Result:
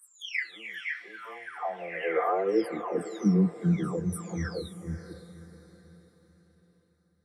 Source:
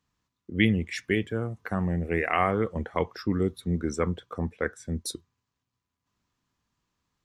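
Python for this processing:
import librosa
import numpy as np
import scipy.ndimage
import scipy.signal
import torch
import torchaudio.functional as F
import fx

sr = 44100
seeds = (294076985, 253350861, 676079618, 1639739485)

y = fx.spec_delay(x, sr, highs='early', ms=926)
y = fx.filter_sweep_highpass(y, sr, from_hz=1300.0, to_hz=71.0, start_s=0.97, end_s=4.54, q=4.3)
y = fx.echo_diffused(y, sr, ms=558, feedback_pct=41, wet_db=-13.0)
y = y * 10.0 ** (-3.5 / 20.0)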